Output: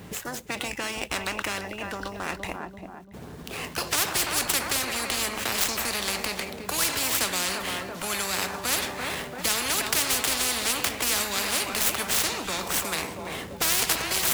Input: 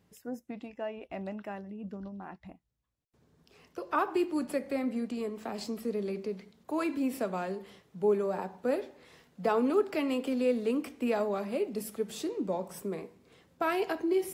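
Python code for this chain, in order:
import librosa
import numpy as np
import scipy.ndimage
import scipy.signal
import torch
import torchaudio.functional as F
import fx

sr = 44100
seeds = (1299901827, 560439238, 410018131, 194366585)

p1 = scipy.ndimage.median_filter(x, 9, mode='constant')
p2 = fx.high_shelf(p1, sr, hz=3000.0, db=10.5)
p3 = p2 + fx.echo_filtered(p2, sr, ms=339, feedback_pct=36, hz=4200.0, wet_db=-16, dry=0)
p4 = fx.spectral_comp(p3, sr, ratio=10.0)
y = F.gain(torch.from_numpy(p4), 8.0).numpy()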